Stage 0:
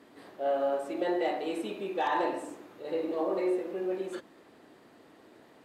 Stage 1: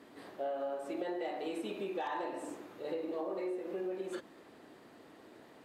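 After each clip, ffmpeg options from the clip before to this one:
-af "acompressor=threshold=0.0178:ratio=6"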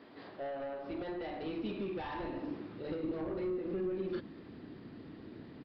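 -af "aresample=11025,asoftclip=type=tanh:threshold=0.0178,aresample=44100,asubboost=boost=8.5:cutoff=230,volume=1.12"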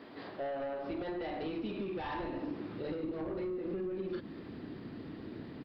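-af "acompressor=threshold=0.0112:ratio=6,volume=1.68"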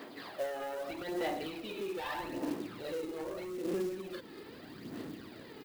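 -af "aphaser=in_gain=1:out_gain=1:delay=2.4:decay=0.53:speed=0.8:type=sinusoidal,aemphasis=mode=production:type=bsi,acrusher=bits=4:mode=log:mix=0:aa=0.000001"

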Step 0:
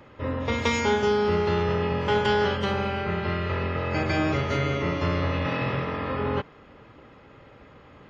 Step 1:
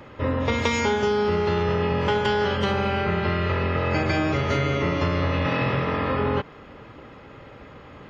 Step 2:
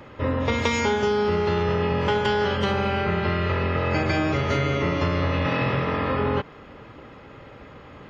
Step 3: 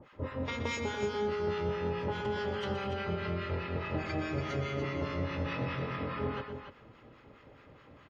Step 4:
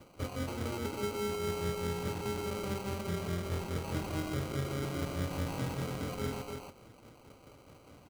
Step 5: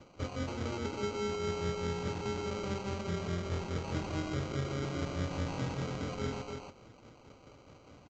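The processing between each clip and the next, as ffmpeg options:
-af "acompressor=threshold=0.0562:ratio=6,volume=2"
-af anull
-filter_complex "[0:a]acrossover=split=900[s0][s1];[s0]aeval=exprs='val(0)*(1-1/2+1/2*cos(2*PI*4.8*n/s))':c=same[s2];[s1]aeval=exprs='val(0)*(1-1/2-1/2*cos(2*PI*4.8*n/s))':c=same[s3];[s2][s3]amix=inputs=2:normalize=0,aecho=1:1:122.4|288.6:0.316|0.398,volume=0.398"
-filter_complex "[0:a]acrossover=split=410|2400[s0][s1][s2];[s1]alimiter=level_in=4.47:limit=0.0631:level=0:latency=1:release=52,volume=0.224[s3];[s0][s3][s2]amix=inputs=3:normalize=0,acrusher=samples=25:mix=1:aa=0.000001"
-af "aresample=16000,aresample=44100"

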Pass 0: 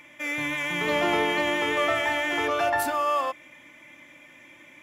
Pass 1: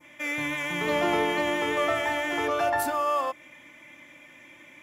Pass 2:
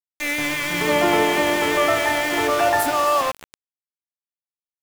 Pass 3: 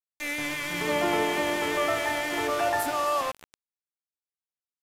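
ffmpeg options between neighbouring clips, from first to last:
-af "adynamicequalizer=threshold=0.0141:dfrequency=2700:dqfactor=0.72:tfrequency=2700:tqfactor=0.72:attack=5:release=100:ratio=0.375:range=2:mode=cutabove:tftype=bell"
-filter_complex "[0:a]asplit=7[s0][s1][s2][s3][s4][s5][s6];[s1]adelay=267,afreqshift=40,volume=0.158[s7];[s2]adelay=534,afreqshift=80,volume=0.0955[s8];[s3]adelay=801,afreqshift=120,volume=0.0569[s9];[s4]adelay=1068,afreqshift=160,volume=0.0343[s10];[s5]adelay=1335,afreqshift=200,volume=0.0207[s11];[s6]adelay=1602,afreqshift=240,volume=0.0123[s12];[s0][s7][s8][s9][s10][s11][s12]amix=inputs=7:normalize=0,aeval=exprs='val(0)*gte(abs(val(0)),0.0299)':c=same,volume=2.24"
-af "aresample=32000,aresample=44100,volume=0.422"

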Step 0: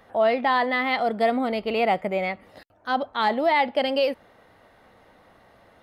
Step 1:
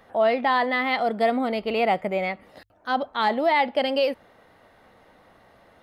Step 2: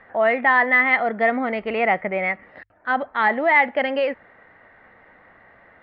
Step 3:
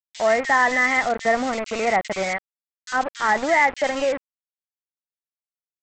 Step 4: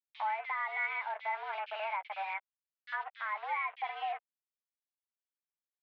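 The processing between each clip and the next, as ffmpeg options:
-af "bandreject=f=50:t=h:w=6,bandreject=f=100:t=h:w=6"
-af "lowpass=f=1900:t=q:w=3.6"
-filter_complex "[0:a]aresample=16000,aeval=exprs='val(0)*gte(abs(val(0)),0.0531)':c=same,aresample=44100,acrossover=split=2400[s0][s1];[s0]adelay=50[s2];[s2][s1]amix=inputs=2:normalize=0"
-filter_complex "[0:a]alimiter=limit=0.126:level=0:latency=1:release=480,asplit=2[s0][s1];[s1]adelay=12,volume=0.251[s2];[s0][s2]amix=inputs=2:normalize=0,highpass=f=410:t=q:w=0.5412,highpass=f=410:t=q:w=1.307,lowpass=f=3200:t=q:w=0.5176,lowpass=f=3200:t=q:w=0.7071,lowpass=f=3200:t=q:w=1.932,afreqshift=200,volume=0.376"

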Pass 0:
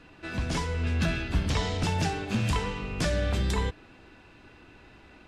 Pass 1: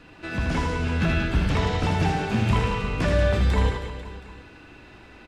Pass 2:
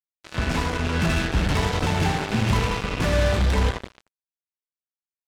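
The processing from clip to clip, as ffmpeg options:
-filter_complex "[0:a]acrossover=split=3000[s0][s1];[s1]acompressor=threshold=0.00447:ratio=4:attack=1:release=60[s2];[s0][s2]amix=inputs=2:normalize=0,aecho=1:1:80|184|319.2|495|723.4:0.631|0.398|0.251|0.158|0.1,volume=1.5"
-af "acrusher=bits=3:mix=0:aa=0.5"

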